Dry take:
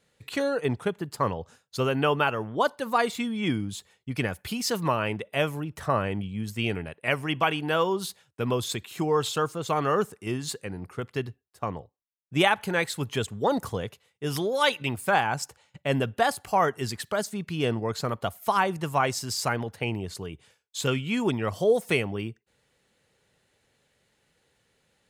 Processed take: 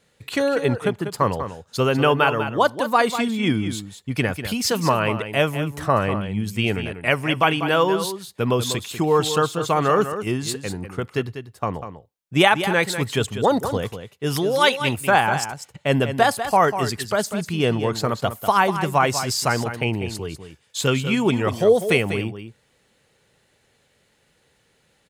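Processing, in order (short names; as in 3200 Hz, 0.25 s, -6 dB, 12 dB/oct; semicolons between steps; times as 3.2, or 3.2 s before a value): echo 0.195 s -10 dB; gain +6 dB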